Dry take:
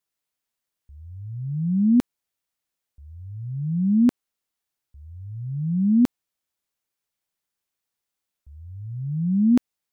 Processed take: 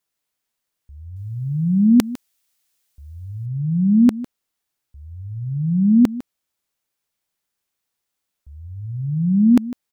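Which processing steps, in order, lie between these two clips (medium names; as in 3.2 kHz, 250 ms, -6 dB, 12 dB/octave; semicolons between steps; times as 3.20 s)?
1.16–3.46 s: treble shelf 2 kHz +11 dB; delay 153 ms -16 dB; trim +4.5 dB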